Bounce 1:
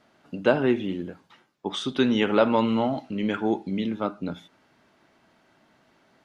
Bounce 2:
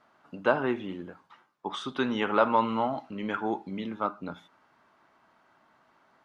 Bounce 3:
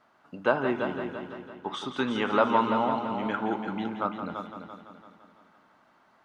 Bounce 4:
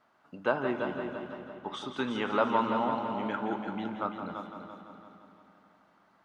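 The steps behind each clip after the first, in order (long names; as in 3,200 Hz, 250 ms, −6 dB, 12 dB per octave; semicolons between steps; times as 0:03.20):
parametric band 1,100 Hz +12.5 dB 1.3 octaves; level −8.5 dB
echo machine with several playback heads 169 ms, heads first and second, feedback 50%, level −9.5 dB
comb and all-pass reverb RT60 3.4 s, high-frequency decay 0.8×, pre-delay 115 ms, DRR 12 dB; level −4 dB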